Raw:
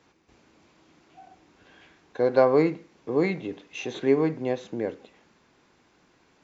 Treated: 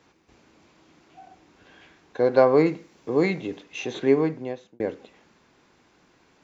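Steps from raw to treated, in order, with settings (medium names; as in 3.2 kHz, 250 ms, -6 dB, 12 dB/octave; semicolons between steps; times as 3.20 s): 2.66–3.63 s: treble shelf 5.8 kHz +8.5 dB; 4.14–4.80 s: fade out; trim +2 dB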